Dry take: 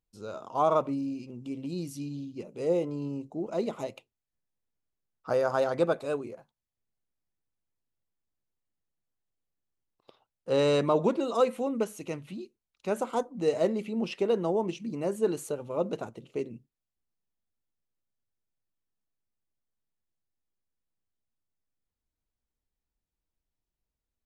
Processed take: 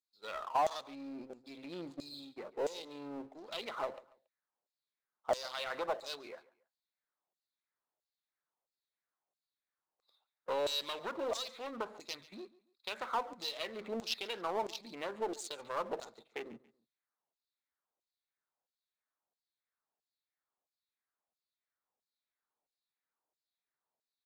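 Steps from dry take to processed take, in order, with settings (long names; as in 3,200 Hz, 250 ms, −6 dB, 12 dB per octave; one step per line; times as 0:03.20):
adaptive Wiener filter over 15 samples
high-pass filter 240 Hz 6 dB per octave
noise gate −44 dBFS, range −25 dB
parametric band 3,800 Hz +12 dB 0.87 octaves
downward compressor, threshold −34 dBFS, peak gain reduction 14.5 dB
tube saturation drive 26 dB, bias 0.7
auto-filter band-pass saw down 1.5 Hz 620–7,500 Hz
power curve on the samples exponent 0.7
repeating echo 140 ms, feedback 31%, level −20.5 dB
level +10 dB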